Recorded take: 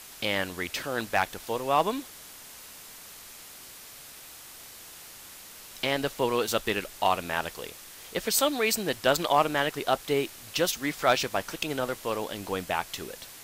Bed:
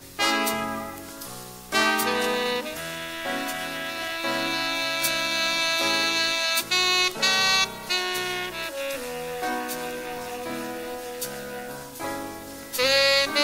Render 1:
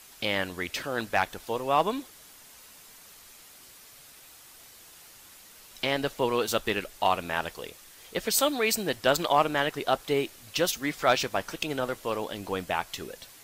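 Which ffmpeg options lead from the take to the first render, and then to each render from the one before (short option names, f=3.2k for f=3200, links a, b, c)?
-af "afftdn=nr=6:nf=-47"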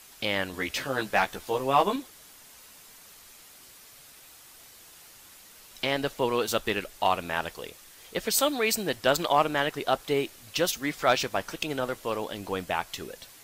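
-filter_complex "[0:a]asettb=1/sr,asplit=3[a][b][c];[a]atrim=end=0.524[d];[b]atrim=start=0.52:end=1.96,asetpts=PTS-STARTPTS,afade=t=in:d=0.004:c=qsin,afade=t=out:st=1.436:d=0.004:c=qsin,asplit=2[e][f];[f]adelay=15,volume=-2.5dB[g];[e][g]amix=inputs=2:normalize=0,atrim=end_sample=63504[h];[c]atrim=start=1.956[i];[d][h]acrossfade=d=0.004:c1=hsin:c2=qsin[j];[j][i]acrossfade=d=0.004:c1=qsin:c2=hsin"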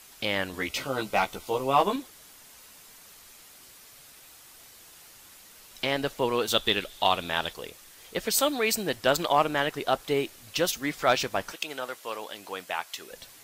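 -filter_complex "[0:a]asettb=1/sr,asplit=3[a][b][c];[a]atrim=end=0.684[d];[b]atrim=start=0.68:end=1.77,asetpts=PTS-STARTPTS,afade=t=in:d=0.004:c=qsin,afade=t=out:st=1.086:d=0.004:c=qsin,asuperstop=centerf=1700:order=4:qfactor=4.9[e];[c]atrim=start=1.766[f];[d][e]acrossfade=d=0.004:c1=hsin:c2=qsin[g];[g][f]acrossfade=d=0.004:c1=qsin:c2=hsin,asettb=1/sr,asplit=3[h][i][j];[h]atrim=end=6.504[k];[i]atrim=start=6.5:end=7.53,asetpts=PTS-STARTPTS,afade=t=in:d=0.004:c=qsin,afade=t=out:st=1.026:d=0.004:c=qsin,equalizer=f=3.5k:w=3.9:g=13.5[l];[j]atrim=start=7.526[m];[k][l]acrossfade=d=0.004:c1=hsin:c2=qsin[n];[n][m]acrossfade=d=0.004:c1=qsin:c2=hsin,asettb=1/sr,asplit=3[o][p][q];[o]atrim=end=11.524[r];[p]atrim=start=11.52:end=13.12,asetpts=PTS-STARTPTS,afade=t=in:d=0.004:c=qsin,afade=t=out:st=1.596:d=0.004:c=qsin,highpass=f=900:p=1[s];[q]atrim=start=13.116[t];[r][s]acrossfade=d=0.004:c1=hsin:c2=qsin[u];[u][t]acrossfade=d=0.004:c1=qsin:c2=hsin"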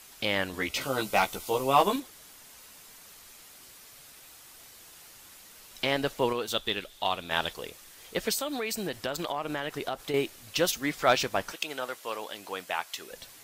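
-filter_complex "[0:a]asettb=1/sr,asplit=3[a][b][c];[a]atrim=end=0.814[d];[b]atrim=start=0.81:end=2,asetpts=PTS-STARTPTS,afade=t=in:d=0.004:c=qsin,afade=t=out:st=1.186:d=0.004:c=qsin,highshelf=f=5.4k:g=7.5[e];[c]atrim=start=1.996[f];[d][e]acrossfade=d=0.004:c1=hsin:c2=qsin[g];[g][f]acrossfade=d=0.004:c1=qsin:c2=hsin,asettb=1/sr,asplit=3[h][i][j];[h]atrim=end=8.334[k];[i]atrim=start=8.33:end=10.14,asetpts=PTS-STARTPTS,afade=t=in:d=0.004:c=qsin,afade=t=out:st=1.806:d=0.004:c=qsin,acompressor=threshold=-28dB:ratio=6:attack=3.2:release=140:knee=1:detection=peak[l];[j]atrim=start=10.136[m];[k][l]acrossfade=d=0.004:c1=hsin:c2=qsin[n];[n][m]acrossfade=d=0.004:c1=qsin:c2=hsin,asplit=3[o][p][q];[o]atrim=end=6.332[r];[p]atrim=start=6.328:end=7.312,asetpts=PTS-STARTPTS,volume=-5.5dB[s];[q]atrim=start=7.308[t];[r][s]acrossfade=d=0.004:c1=hsin:c2=hsin[u];[u][t]acrossfade=d=0.004:c1=hsin:c2=hsin"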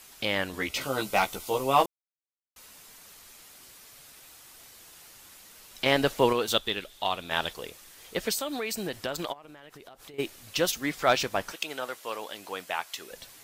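-filter_complex "[0:a]asplit=3[a][b][c];[a]afade=t=out:st=9.32:d=0.02[d];[b]acompressor=threshold=-44dB:ratio=16:attack=3.2:release=140:knee=1:detection=peak,afade=t=in:st=9.32:d=0.02,afade=t=out:st=10.18:d=0.02[e];[c]afade=t=in:st=10.18:d=0.02[f];[d][e][f]amix=inputs=3:normalize=0,asplit=5[g][h][i][j][k];[g]atrim=end=1.86,asetpts=PTS-STARTPTS,afade=t=out:st=1.856:d=0.004:c=hsin[l];[h]atrim=start=1.86:end=2.56,asetpts=PTS-STARTPTS,volume=0[m];[i]atrim=start=2.56:end=5.862,asetpts=PTS-STARTPTS,afade=t=in:d=0.004:c=hsin[n];[j]atrim=start=5.858:end=6.582,asetpts=PTS-STARTPTS,volume=4.5dB[o];[k]atrim=start=6.578[p];[l][m][n]concat=n=3:v=0:a=1[q];[q][o]acrossfade=d=0.004:c1=hsin:c2=hsin[r];[r][p]acrossfade=d=0.004:c1=hsin:c2=hsin"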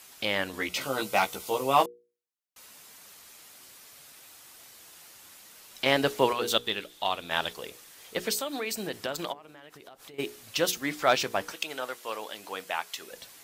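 -af "highpass=f=120:p=1,bandreject=f=60:t=h:w=6,bandreject=f=120:t=h:w=6,bandreject=f=180:t=h:w=6,bandreject=f=240:t=h:w=6,bandreject=f=300:t=h:w=6,bandreject=f=360:t=h:w=6,bandreject=f=420:t=h:w=6,bandreject=f=480:t=h:w=6"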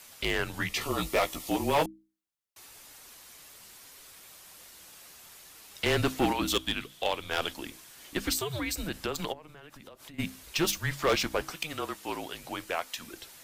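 -af "afreqshift=-160,volume=20dB,asoftclip=hard,volume=-20dB"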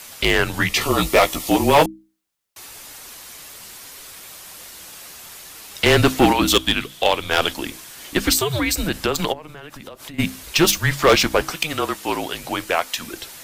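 -af "volume=12dB"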